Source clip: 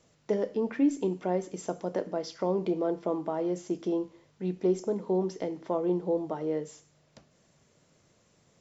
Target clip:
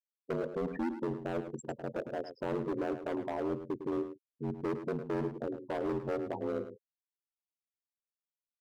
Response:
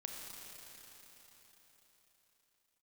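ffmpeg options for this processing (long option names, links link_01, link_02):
-filter_complex "[0:a]afftfilt=real='re*gte(hypot(re,im),0.0398)':imag='im*gte(hypot(re,im),0.0398)':win_size=1024:overlap=0.75,acontrast=31,volume=23.5dB,asoftclip=hard,volume=-23.5dB,aeval=exprs='val(0)*sin(2*PI*44*n/s)':channel_layout=same,asplit=2[link_01][link_02];[link_02]adelay=105,volume=-10dB,highshelf=frequency=4000:gain=-2.36[link_03];[link_01][link_03]amix=inputs=2:normalize=0,volume=-4.5dB"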